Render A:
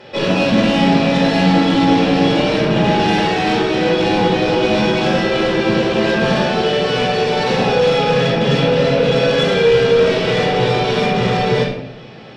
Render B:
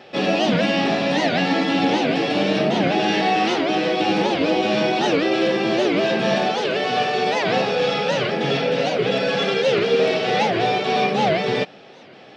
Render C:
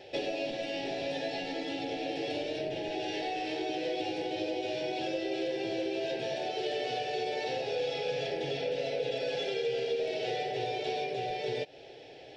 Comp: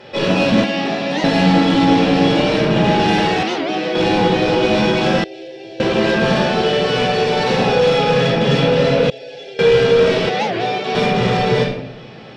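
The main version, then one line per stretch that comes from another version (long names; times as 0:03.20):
A
0:00.64–0:01.24: punch in from B
0:03.43–0:03.95: punch in from B
0:05.24–0:05.80: punch in from C
0:09.10–0:09.59: punch in from C
0:10.29–0:10.95: punch in from B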